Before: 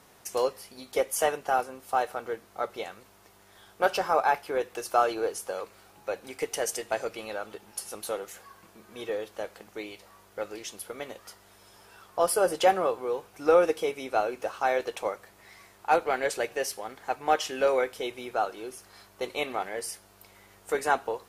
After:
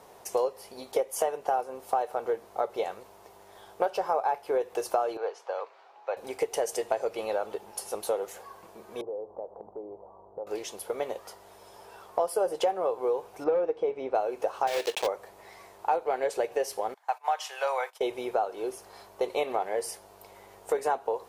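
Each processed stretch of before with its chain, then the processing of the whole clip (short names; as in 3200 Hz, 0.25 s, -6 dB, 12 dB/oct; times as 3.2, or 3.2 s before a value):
5.17–6.17 HPF 790 Hz + air absorption 200 m
9.01–10.47 steep low-pass 1000 Hz + compressor 3:1, threshold -45 dBFS
13.44–14.15 hard clip -17 dBFS + companded quantiser 8-bit + tape spacing loss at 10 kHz 29 dB
14.67–15.08 block floating point 3-bit + weighting filter D + hard clip -23.5 dBFS
16.94–18.01 HPF 790 Hz 24 dB/oct + gate -46 dBFS, range -16 dB
whole clip: band shelf 620 Hz +9.5 dB; compressor 6:1, threshold -23 dBFS; gain -1 dB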